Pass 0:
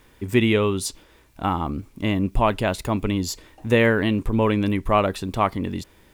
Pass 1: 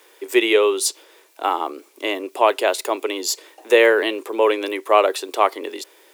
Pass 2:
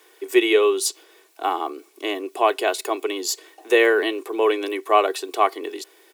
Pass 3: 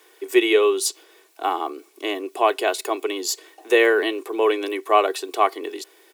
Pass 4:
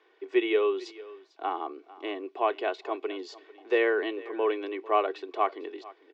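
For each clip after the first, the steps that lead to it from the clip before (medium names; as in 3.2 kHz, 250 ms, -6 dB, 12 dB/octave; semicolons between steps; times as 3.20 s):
steep high-pass 360 Hz 48 dB/octave; peaking EQ 1.3 kHz -5 dB 2.6 oct; trim +8.5 dB
comb 2.7 ms, depth 57%; trim -3.5 dB
no audible change
Gaussian low-pass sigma 2.4 samples; delay 448 ms -19.5 dB; trim -7.5 dB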